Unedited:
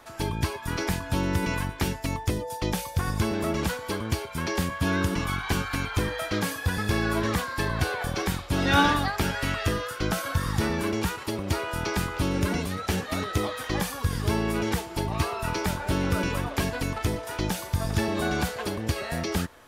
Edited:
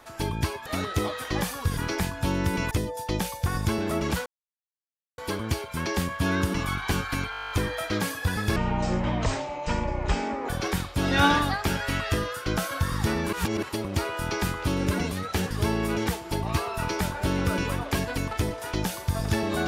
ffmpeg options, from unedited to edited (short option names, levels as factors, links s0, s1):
-filter_complex "[0:a]asplit=20[s0][s1][s2][s3][s4][s5][s6][s7][s8][s9][s10][s11][s12][s13][s14][s15][s16][s17][s18][s19];[s0]atrim=end=0.662[s20];[s1]atrim=start=13.048:end=14.162[s21];[s2]atrim=start=0.658:end=1.602[s22];[s3]atrim=start=2.238:end=3.79,asetpts=PTS-STARTPTS,afade=t=out:st=1.548:d=0.004:c=hsin,apad=pad_dur=0.92[s23];[s4]atrim=start=3.79:end=5.942,asetpts=PTS-STARTPTS,afade=t=in:d=0.004:c=hsin[s24];[s5]atrim=start=5.918:end=5.942[s25];[s6]atrim=start=5.918:end=5.942[s26];[s7]atrim=start=5.918:end=5.942[s27];[s8]atrim=start=5.918:end=5.942[s28];[s9]atrim=start=5.918:end=5.942[s29];[s10]atrim=start=5.918:end=5.942[s30];[s11]atrim=start=5.918:end=5.942[s31];[s12]atrim=start=5.918:end=5.942[s32];[s13]atrim=start=5.918:end=5.942[s33];[s14]atrim=start=5.918:end=6.974[s34];[s15]atrim=start=6.97:end=8.03,asetpts=PTS-STARTPTS,asetrate=24255,aresample=44100[s35];[s16]atrim=start=8.026:end=10.872[s36];[s17]atrim=start=10.868:end=11.172,asetpts=PTS-STARTPTS,areverse[s37];[s18]atrim=start=11.168:end=13.052[s38];[s19]atrim=start=14.158[s39];[s20][s21]acrossfade=d=0.004:c1=hsin:c2=hsin[s40];[s40][s22]acrossfade=d=0.004:c1=hsin:c2=hsin[s41];[s23][s24]concat=n=2:v=0:a=1[s42];[s41][s42]acrossfade=d=0.004:c1=hsin:c2=hsin[s43];[s43][s25]acrossfade=d=0.004:c1=hsin:c2=hsin[s44];[s44][s26]acrossfade=d=0.004:c1=hsin:c2=hsin[s45];[s45][s27]acrossfade=d=0.004:c1=hsin:c2=hsin[s46];[s46][s28]acrossfade=d=0.004:c1=hsin:c2=hsin[s47];[s47][s29]acrossfade=d=0.004:c1=hsin:c2=hsin[s48];[s48][s30]acrossfade=d=0.004:c1=hsin:c2=hsin[s49];[s49][s31]acrossfade=d=0.004:c1=hsin:c2=hsin[s50];[s50][s32]acrossfade=d=0.004:c1=hsin:c2=hsin[s51];[s51][s33]acrossfade=d=0.004:c1=hsin:c2=hsin[s52];[s52][s34]acrossfade=d=0.004:c1=hsin:c2=hsin[s53];[s53][s35]acrossfade=d=0.004:c1=hsin:c2=hsin[s54];[s54][s36]acrossfade=d=0.004:c1=hsin:c2=hsin[s55];[s55][s37]acrossfade=d=0.004:c1=hsin:c2=hsin[s56];[s56][s38]acrossfade=d=0.004:c1=hsin:c2=hsin[s57];[s57][s39]acrossfade=d=0.004:c1=hsin:c2=hsin"